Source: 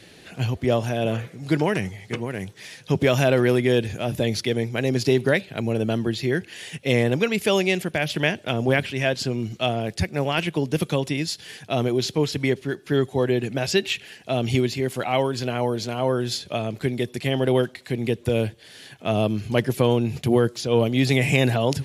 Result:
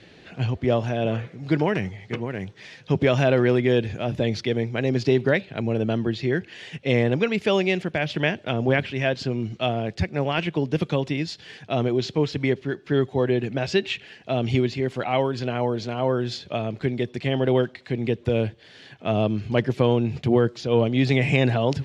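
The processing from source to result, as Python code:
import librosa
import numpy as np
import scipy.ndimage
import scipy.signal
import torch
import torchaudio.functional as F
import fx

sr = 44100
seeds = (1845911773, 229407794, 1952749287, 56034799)

y = fx.air_absorb(x, sr, metres=140.0)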